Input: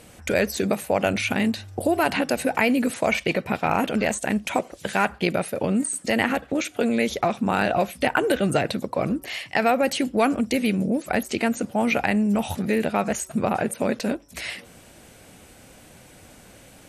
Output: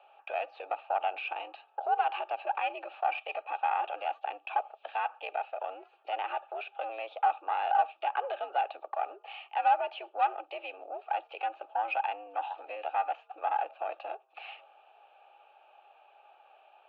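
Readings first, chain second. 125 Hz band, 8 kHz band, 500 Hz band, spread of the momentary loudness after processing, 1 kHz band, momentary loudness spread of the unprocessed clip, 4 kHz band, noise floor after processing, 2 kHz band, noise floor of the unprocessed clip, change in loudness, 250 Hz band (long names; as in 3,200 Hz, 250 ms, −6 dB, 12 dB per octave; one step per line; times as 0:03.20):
below −40 dB, below −40 dB, −14.0 dB, 12 LU, −2.0 dB, 5 LU, −14.0 dB, −64 dBFS, −13.0 dB, −49 dBFS, −10.0 dB, below −35 dB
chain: in parallel at +1.5 dB: brickwall limiter −16.5 dBFS, peak gain reduction 10.5 dB
on the sum: formant filter a
harmonic generator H 4 −19 dB, 6 −28 dB, 8 −32 dB, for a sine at −11 dBFS
single-sideband voice off tune +89 Hz 350–3,500 Hz
level −4.5 dB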